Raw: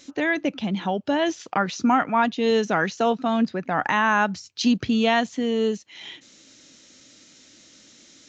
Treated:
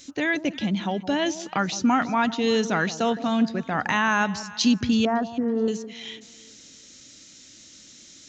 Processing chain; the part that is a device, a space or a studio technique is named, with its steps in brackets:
smiley-face EQ (low-shelf EQ 110 Hz +8 dB; parametric band 670 Hz −4 dB 2.4 octaves; high-shelf EQ 5,000 Hz +7.5 dB)
0:05.05–0:05.68: Butterworth low-pass 1,500 Hz 36 dB per octave
delay that swaps between a low-pass and a high-pass 164 ms, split 910 Hz, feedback 56%, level −13 dB

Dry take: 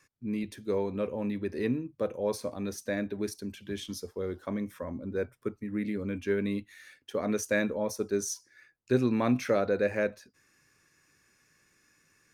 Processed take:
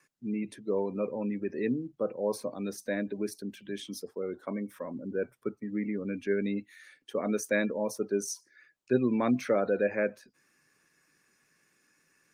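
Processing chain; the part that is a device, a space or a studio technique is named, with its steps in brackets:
0:03.49–0:04.94: dynamic equaliser 100 Hz, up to −4 dB, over −49 dBFS, Q 0.75
noise-suppressed video call (high-pass filter 140 Hz 24 dB per octave; gate on every frequency bin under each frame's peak −30 dB strong; Opus 32 kbit/s 48,000 Hz)

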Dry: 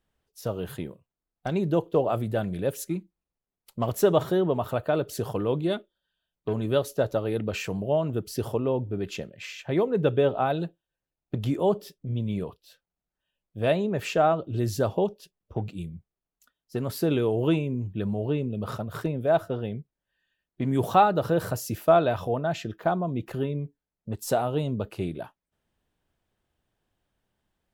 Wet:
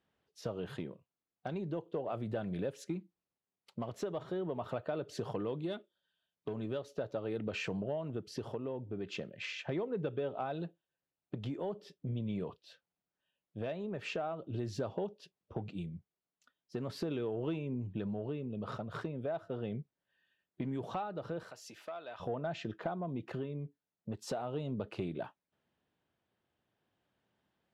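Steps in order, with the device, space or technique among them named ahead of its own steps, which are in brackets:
AM radio (band-pass filter 120–4,500 Hz; downward compressor 6 to 1, threshold −33 dBFS, peak gain reduction 18 dB; soft clipping −23 dBFS, distortion −25 dB; amplitude tremolo 0.4 Hz, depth 28%)
0:05.44–0:06.52: high-shelf EQ 6,500 Hz +9.5 dB
0:21.43–0:22.20: high-pass filter 1,400 Hz 6 dB per octave

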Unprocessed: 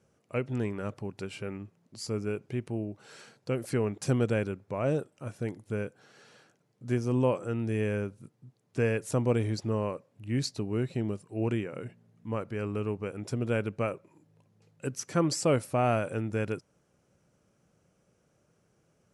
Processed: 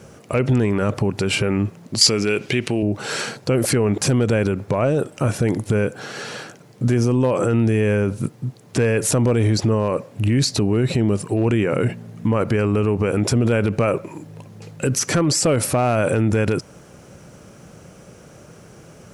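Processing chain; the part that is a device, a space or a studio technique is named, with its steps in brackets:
loud club master (downward compressor 2.5 to 1, threshold −30 dBFS, peak gain reduction 7 dB; hard clipping −24 dBFS, distortion −27 dB; boost into a limiter +35.5 dB)
0:02.01–0:02.83: meter weighting curve D
level −10 dB

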